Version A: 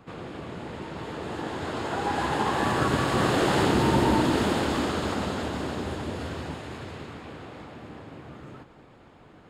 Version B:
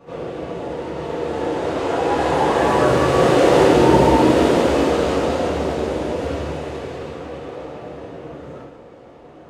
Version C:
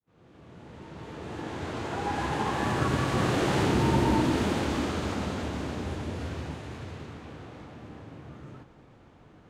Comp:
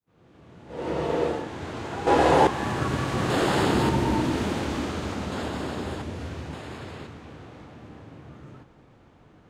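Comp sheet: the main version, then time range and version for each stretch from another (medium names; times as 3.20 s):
C
0.79–1.36 s: from B, crossfade 0.24 s
2.07–2.47 s: from B
3.30–3.89 s: from A
5.32–6.02 s: from A
6.53–7.07 s: from A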